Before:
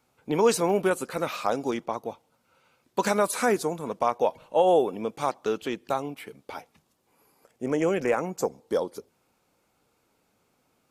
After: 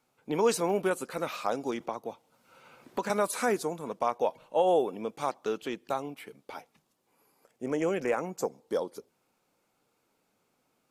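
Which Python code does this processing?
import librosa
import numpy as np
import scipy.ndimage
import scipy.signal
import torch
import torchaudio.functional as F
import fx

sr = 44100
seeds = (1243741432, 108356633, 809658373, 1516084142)

y = fx.peak_eq(x, sr, hz=65.0, db=-15.0, octaves=0.84)
y = fx.band_squash(y, sr, depth_pct=70, at=(1.8, 3.1))
y = F.gain(torch.from_numpy(y), -4.0).numpy()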